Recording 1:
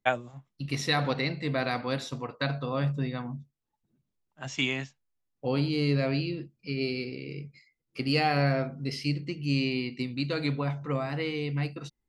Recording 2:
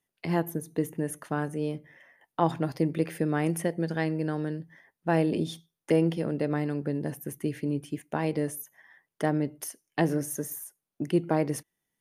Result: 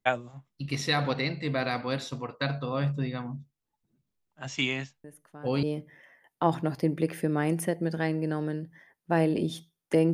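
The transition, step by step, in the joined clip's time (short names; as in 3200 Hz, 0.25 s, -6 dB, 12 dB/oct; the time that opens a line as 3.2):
recording 1
5.04 add recording 2 from 1.01 s 0.59 s -16.5 dB
5.63 switch to recording 2 from 1.6 s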